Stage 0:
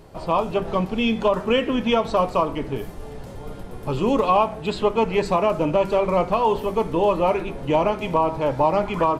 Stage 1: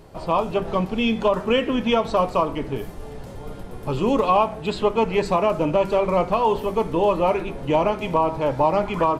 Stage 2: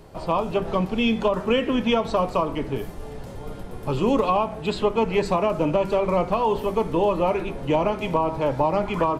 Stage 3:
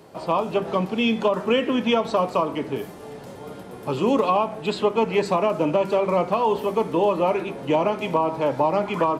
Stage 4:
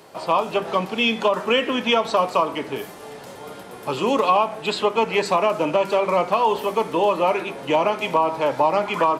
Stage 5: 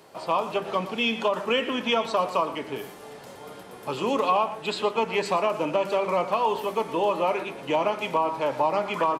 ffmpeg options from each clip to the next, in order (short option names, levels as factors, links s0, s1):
-af anull
-filter_complex "[0:a]acrossover=split=360[s0][s1];[s1]acompressor=threshold=0.1:ratio=2.5[s2];[s0][s2]amix=inputs=2:normalize=0"
-af "highpass=170,volume=1.12"
-af "lowshelf=f=490:g=-11.5,volume=2"
-af "aecho=1:1:116:0.188,volume=0.562"